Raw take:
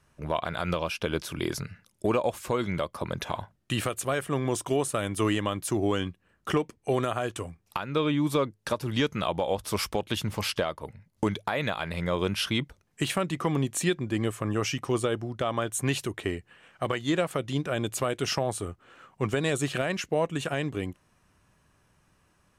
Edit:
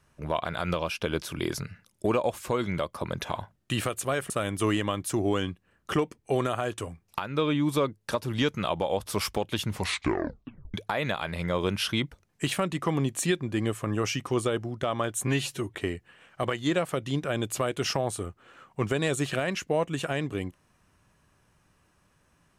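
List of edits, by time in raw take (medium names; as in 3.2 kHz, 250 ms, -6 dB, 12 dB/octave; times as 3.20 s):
4.30–4.88 s: delete
10.31 s: tape stop 1.01 s
15.85–16.17 s: stretch 1.5×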